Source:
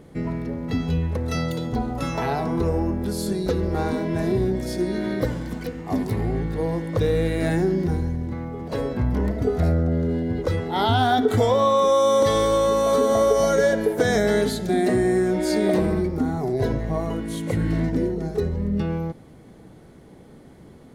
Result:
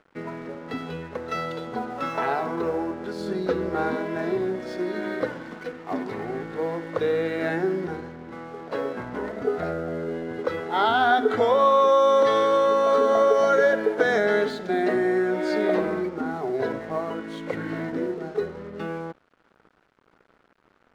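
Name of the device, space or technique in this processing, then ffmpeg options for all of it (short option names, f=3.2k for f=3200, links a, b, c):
pocket radio on a weak battery: -filter_complex "[0:a]highpass=300,lowpass=3.3k,bandreject=f=50:t=h:w=6,bandreject=f=100:t=h:w=6,bandreject=f=150:t=h:w=6,bandreject=f=200:t=h:w=6,bandreject=f=250:t=h:w=6,bandreject=f=300:t=h:w=6,bandreject=f=350:t=h:w=6,aeval=exprs='sgn(val(0))*max(abs(val(0))-0.00355,0)':c=same,equalizer=f=1.4k:t=o:w=0.53:g=6.5,asettb=1/sr,asplit=3[a][b][c];[a]atrim=end=3.204[d];[b]atrim=start=3.2:end=3.96,asetpts=PTS-STARTPTS,afade=t=in:d=0.004:c=qsin,afade=t=out:st=0.756:d=0.004:c=qsin,lowshelf=f=190:g=8[e];[c]atrim=start=3.956[f];[d][e]acrossfade=d=0.004:c1=hsin:c2=qsin[g];[g][f]acrossfade=d=0.004:c1=qsin:c2=hsin"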